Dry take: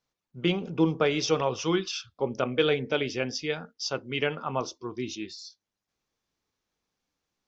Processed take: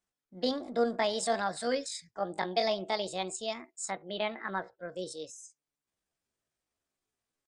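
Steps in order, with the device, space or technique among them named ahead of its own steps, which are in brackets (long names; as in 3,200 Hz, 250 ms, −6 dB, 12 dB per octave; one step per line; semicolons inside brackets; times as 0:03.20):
0:03.93–0:04.90: Butterworth low-pass 2,400 Hz 36 dB per octave
chipmunk voice (pitch shifter +6.5 semitones)
level −5 dB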